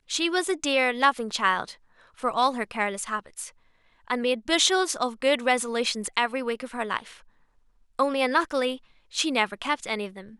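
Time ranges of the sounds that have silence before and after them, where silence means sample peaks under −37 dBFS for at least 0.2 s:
0:02.19–0:03.49
0:04.08–0:07.13
0:07.99–0:08.77

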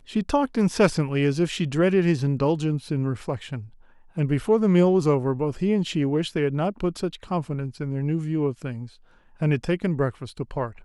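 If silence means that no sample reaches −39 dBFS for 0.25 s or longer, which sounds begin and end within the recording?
0:04.17–0:08.87

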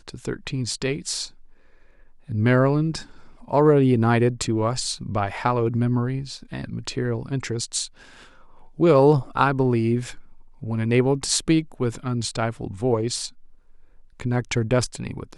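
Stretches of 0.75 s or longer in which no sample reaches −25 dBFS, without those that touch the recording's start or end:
0:01.25–0:02.30
0:07.85–0:08.80
0:13.26–0:14.20

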